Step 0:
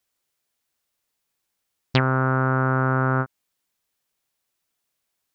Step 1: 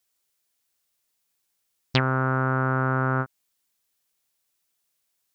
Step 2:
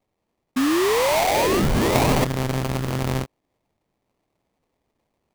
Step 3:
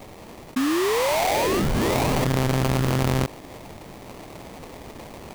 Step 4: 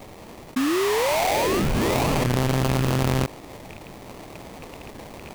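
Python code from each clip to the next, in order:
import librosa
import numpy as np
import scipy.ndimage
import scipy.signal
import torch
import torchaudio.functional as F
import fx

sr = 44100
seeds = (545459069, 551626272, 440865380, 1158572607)

y1 = fx.high_shelf(x, sr, hz=3300.0, db=7.0)
y1 = y1 * 10.0 ** (-3.0 / 20.0)
y2 = fx.rider(y1, sr, range_db=10, speed_s=0.5)
y2 = fx.spec_paint(y2, sr, seeds[0], shape='rise', start_s=0.56, length_s=1.69, low_hz=250.0, high_hz=3400.0, level_db=-19.0)
y2 = fx.sample_hold(y2, sr, seeds[1], rate_hz=1500.0, jitter_pct=20)
y3 = fx.env_flatten(y2, sr, amount_pct=100)
y3 = y3 * 10.0 ** (-5.5 / 20.0)
y4 = fx.rattle_buzz(y3, sr, strikes_db=-38.0, level_db=-28.0)
y4 = fx.record_warp(y4, sr, rpm=45.0, depth_cents=100.0)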